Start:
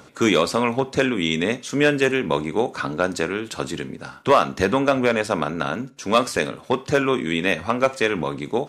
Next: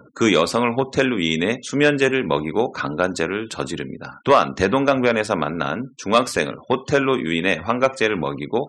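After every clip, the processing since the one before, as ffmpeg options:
ffmpeg -i in.wav -af "afftfilt=real='re*gte(hypot(re,im),0.01)':imag='im*gte(hypot(re,im),0.01)':win_size=1024:overlap=0.75,volume=1.5dB" out.wav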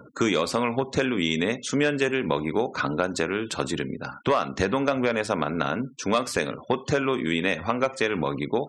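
ffmpeg -i in.wav -af "acompressor=threshold=-21dB:ratio=3" out.wav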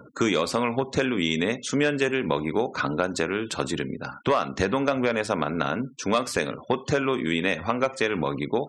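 ffmpeg -i in.wav -af anull out.wav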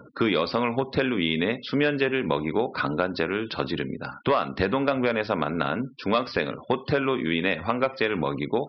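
ffmpeg -i in.wav -af "aresample=11025,aresample=44100" out.wav

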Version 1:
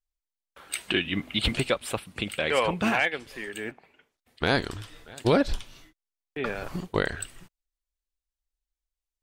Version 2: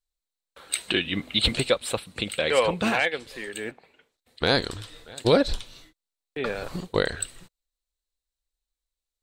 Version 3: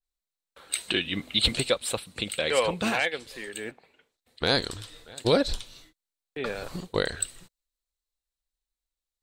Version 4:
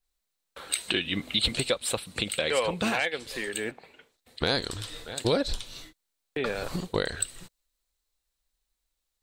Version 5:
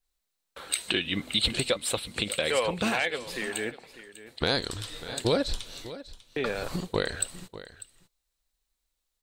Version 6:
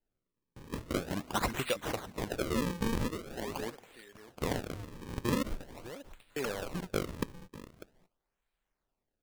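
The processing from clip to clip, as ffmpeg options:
ffmpeg -i in.wav -af "equalizer=frequency=500:width_type=o:width=0.33:gain=6,equalizer=frequency=4000:width_type=o:width=0.33:gain=10,equalizer=frequency=8000:width_type=o:width=0.33:gain=6" out.wav
ffmpeg -i in.wav -af "adynamicequalizer=threshold=0.0126:dfrequency=3600:dqfactor=0.7:tfrequency=3600:tqfactor=0.7:attack=5:release=100:ratio=0.375:range=2.5:mode=boostabove:tftype=highshelf,volume=-3dB" out.wav
ffmpeg -i in.wav -af "acompressor=threshold=-39dB:ratio=2,volume=8dB" out.wav
ffmpeg -i in.wav -af "aecho=1:1:596:0.168" out.wav
ffmpeg -i in.wav -af "acrusher=samples=36:mix=1:aa=0.000001:lfo=1:lforange=57.6:lforate=0.44,volume=-5.5dB" out.wav

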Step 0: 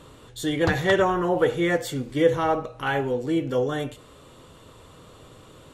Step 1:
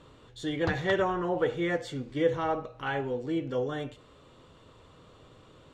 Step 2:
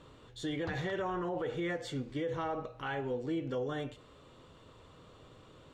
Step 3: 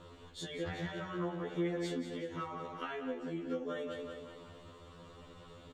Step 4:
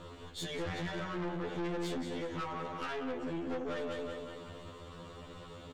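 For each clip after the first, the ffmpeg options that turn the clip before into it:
ffmpeg -i in.wav -af "lowpass=5500,volume=-6.5dB" out.wav
ffmpeg -i in.wav -af "alimiter=level_in=2dB:limit=-24dB:level=0:latency=1:release=96,volume=-2dB,volume=-1.5dB" out.wav
ffmpeg -i in.wav -af "aecho=1:1:187|374|561|748|935|1122:0.398|0.203|0.104|0.0528|0.0269|0.0137,acompressor=threshold=-37dB:ratio=6,afftfilt=real='re*2*eq(mod(b,4),0)':imag='im*2*eq(mod(b,4),0)':win_size=2048:overlap=0.75,volume=4dB" out.wav
ffmpeg -i in.wav -af "aeval=exprs='(tanh(112*val(0)+0.45)-tanh(0.45))/112':channel_layout=same,volume=7dB" out.wav

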